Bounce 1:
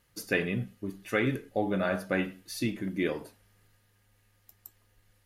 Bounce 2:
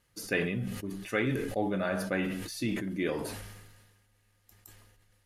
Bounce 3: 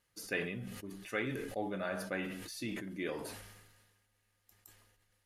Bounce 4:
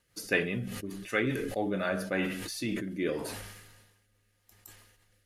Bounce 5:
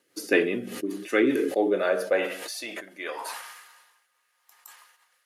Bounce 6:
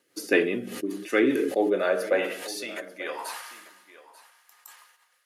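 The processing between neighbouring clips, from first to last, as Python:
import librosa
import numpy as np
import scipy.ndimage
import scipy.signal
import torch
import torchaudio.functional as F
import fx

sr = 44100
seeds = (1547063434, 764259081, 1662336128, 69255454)

y1 = scipy.signal.sosfilt(scipy.signal.cheby1(2, 1.0, 11000.0, 'lowpass', fs=sr, output='sos'), x)
y1 = fx.sustainer(y1, sr, db_per_s=40.0)
y1 = y1 * librosa.db_to_amplitude(-1.5)
y2 = fx.low_shelf(y1, sr, hz=300.0, db=-6.0)
y2 = y2 * librosa.db_to_amplitude(-5.0)
y3 = fx.rotary_switch(y2, sr, hz=5.0, then_hz=0.8, switch_at_s=1.38)
y3 = y3 * librosa.db_to_amplitude(9.0)
y4 = fx.filter_sweep_highpass(y3, sr, from_hz=320.0, to_hz=1000.0, start_s=1.38, end_s=3.37, q=3.0)
y4 = y4 * librosa.db_to_amplitude(3.0)
y5 = y4 + 10.0 ** (-17.5 / 20.0) * np.pad(y4, (int(890 * sr / 1000.0), 0))[:len(y4)]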